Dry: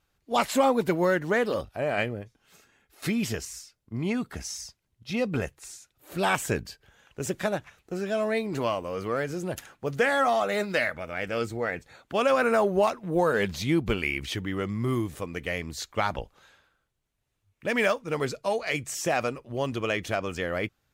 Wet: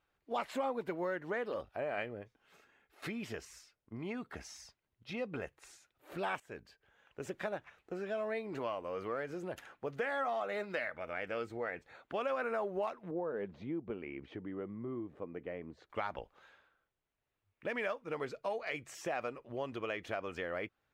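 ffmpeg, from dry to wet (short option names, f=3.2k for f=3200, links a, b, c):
-filter_complex "[0:a]asettb=1/sr,asplit=3[a][b][c];[a]atrim=end=13.114[d];[b]atrim=start=13.11:end=15.9,asetpts=PTS-STARTPTS,afade=t=in:d=0.004:c=qsin,afade=t=out:st=2.786:d=0.004:c=qsin,bandpass=f=270:t=q:w=0.66[e];[c]atrim=start=15.896[f];[d][e]acrossfade=d=0.004:c1=hsin:c2=qsin[g];[g][f]acrossfade=d=0.004:c1=qsin:c2=hsin,asplit=2[h][i];[h]atrim=end=6.4,asetpts=PTS-STARTPTS,afade=t=out:st=6.396:d=0.004:c=hsin:silence=0.141254[j];[i]atrim=start=6.4,asetpts=PTS-STARTPTS,afade=t=in:d=1.09:silence=0.141254[k];[j][k]concat=n=2:v=0:a=1,acompressor=threshold=-33dB:ratio=2.5,bass=f=250:g=-9,treble=f=4k:g=-14,volume=-3dB"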